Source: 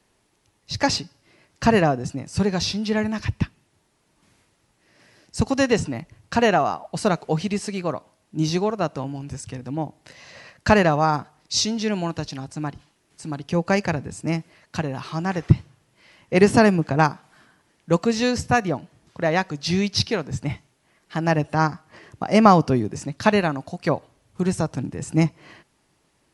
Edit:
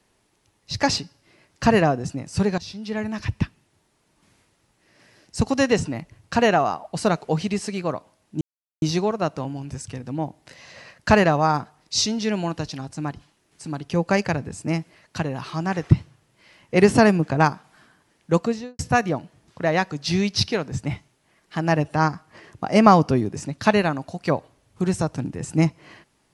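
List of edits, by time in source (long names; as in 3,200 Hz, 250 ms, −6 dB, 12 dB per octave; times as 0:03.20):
0:02.58–0:03.38: fade in, from −16.5 dB
0:08.41: splice in silence 0.41 s
0:17.94–0:18.38: fade out and dull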